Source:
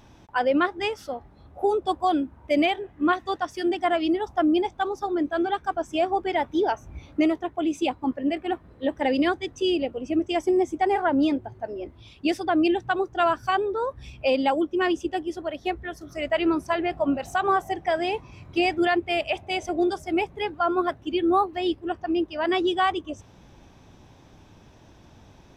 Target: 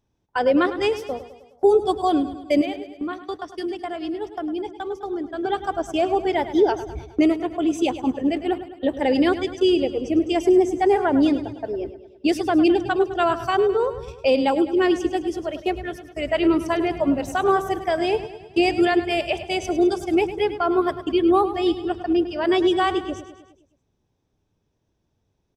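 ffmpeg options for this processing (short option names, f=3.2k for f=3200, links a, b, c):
-filter_complex "[0:a]bass=f=250:g=6,treble=f=4k:g=6,asettb=1/sr,asplit=3[a][b][c];[a]atrim=end=2.614[d];[b]atrim=start=2.61:end=5.45,asetpts=PTS-STARTPTS,afade=t=in:d=0.004:c=qsin,afade=t=out:st=2.836:d=0.004:c=qsin,acompressor=threshold=-30dB:ratio=4[e];[c]atrim=start=5.446[f];[d][e]acrossfade=d=0.004:c1=hsin:c2=qsin[g];[g][f]acrossfade=d=0.004:c1=qsin:c2=hsin,agate=range=-26dB:threshold=-35dB:ratio=16:detection=peak,equalizer=f=430:w=2.5:g=7.5,aecho=1:1:104|208|312|416|520|624:0.224|0.125|0.0702|0.0393|0.022|0.0123"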